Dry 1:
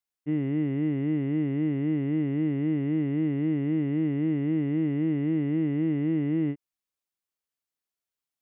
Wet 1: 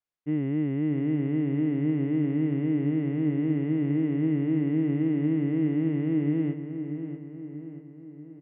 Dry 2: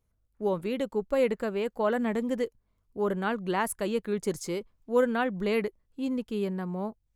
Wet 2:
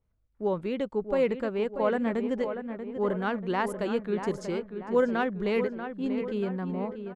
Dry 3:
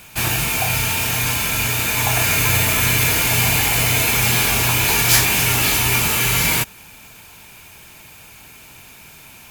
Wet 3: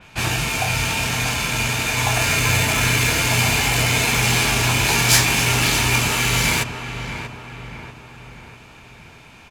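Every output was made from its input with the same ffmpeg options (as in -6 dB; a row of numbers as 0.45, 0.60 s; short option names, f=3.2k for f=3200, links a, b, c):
-filter_complex "[0:a]asplit=2[a][b];[b]adelay=637,lowpass=f=2.7k:p=1,volume=-8.5dB,asplit=2[c][d];[d]adelay=637,lowpass=f=2.7k:p=1,volume=0.53,asplit=2[e][f];[f]adelay=637,lowpass=f=2.7k:p=1,volume=0.53,asplit=2[g][h];[h]adelay=637,lowpass=f=2.7k:p=1,volume=0.53,asplit=2[i][j];[j]adelay=637,lowpass=f=2.7k:p=1,volume=0.53,asplit=2[k][l];[l]adelay=637,lowpass=f=2.7k:p=1,volume=0.53[m];[a][c][e][g][i][k][m]amix=inputs=7:normalize=0,adynamicsmooth=sensitivity=1:basefreq=4.7k,adynamicequalizer=threshold=0.0158:dfrequency=4500:dqfactor=0.7:tfrequency=4500:tqfactor=0.7:attack=5:release=100:ratio=0.375:range=2.5:mode=boostabove:tftype=highshelf"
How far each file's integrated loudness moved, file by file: +0.5, +0.5, -2.0 LU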